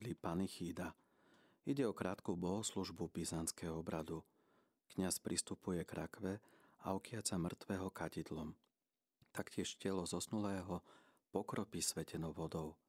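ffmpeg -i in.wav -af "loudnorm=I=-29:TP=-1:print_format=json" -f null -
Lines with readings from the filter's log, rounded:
"input_i" : "-44.3",
"input_tp" : "-23.1",
"input_lra" : "2.0",
"input_thresh" : "-54.5",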